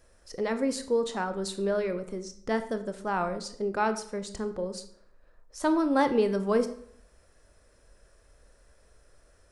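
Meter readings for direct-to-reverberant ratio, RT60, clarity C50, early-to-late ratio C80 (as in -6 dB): 9.0 dB, 0.65 s, 12.5 dB, 15.5 dB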